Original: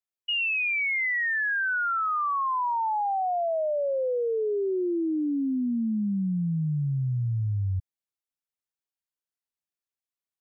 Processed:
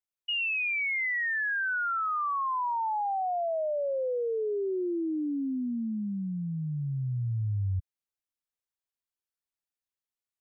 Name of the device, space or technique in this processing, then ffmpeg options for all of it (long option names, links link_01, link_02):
low shelf boost with a cut just above: -af "lowshelf=frequency=97:gain=5,equalizer=frequency=170:width_type=o:width=1.1:gain=-4.5,volume=-3dB"